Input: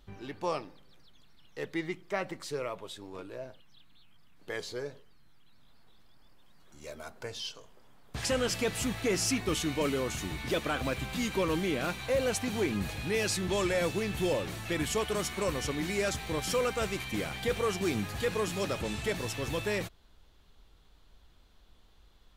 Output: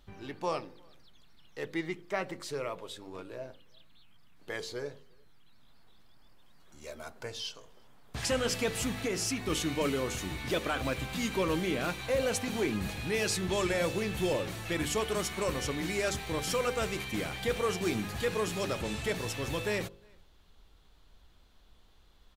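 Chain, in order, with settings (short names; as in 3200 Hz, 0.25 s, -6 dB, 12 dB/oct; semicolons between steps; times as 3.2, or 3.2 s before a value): de-hum 49.86 Hz, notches 11; 8.89–9.5 compressor, threshold -29 dBFS, peak gain reduction 4.5 dB; outdoor echo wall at 61 m, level -30 dB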